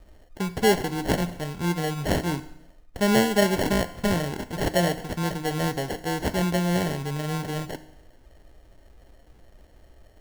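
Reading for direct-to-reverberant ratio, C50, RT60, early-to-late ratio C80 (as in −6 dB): 11.0 dB, 14.5 dB, 0.75 s, 17.0 dB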